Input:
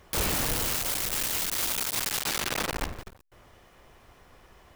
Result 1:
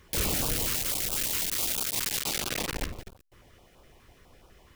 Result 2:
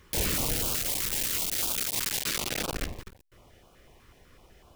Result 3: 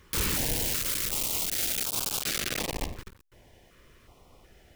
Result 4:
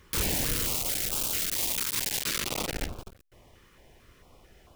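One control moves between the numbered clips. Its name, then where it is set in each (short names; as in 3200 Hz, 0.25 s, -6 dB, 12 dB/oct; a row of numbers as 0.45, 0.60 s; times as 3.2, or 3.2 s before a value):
stepped notch, rate: 12, 8, 2.7, 4.5 Hz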